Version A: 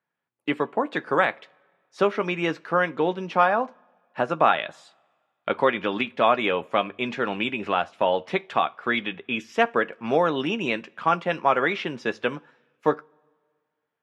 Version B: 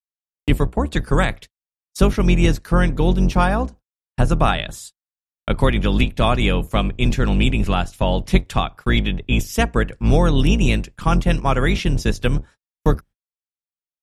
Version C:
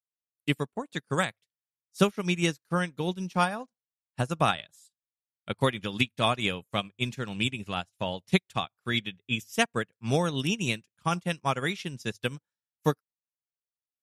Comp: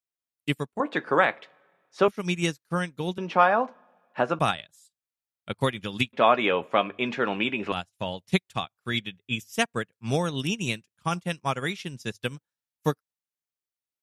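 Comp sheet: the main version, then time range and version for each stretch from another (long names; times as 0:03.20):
C
0:00.80–0:02.08: punch in from A
0:03.18–0:04.39: punch in from A
0:06.13–0:07.72: punch in from A
not used: B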